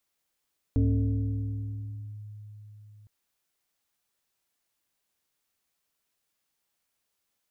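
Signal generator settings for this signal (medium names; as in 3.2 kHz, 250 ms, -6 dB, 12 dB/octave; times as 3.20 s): FM tone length 2.31 s, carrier 105 Hz, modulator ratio 1.62, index 1.1, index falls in 1.46 s linear, decay 4.41 s, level -19 dB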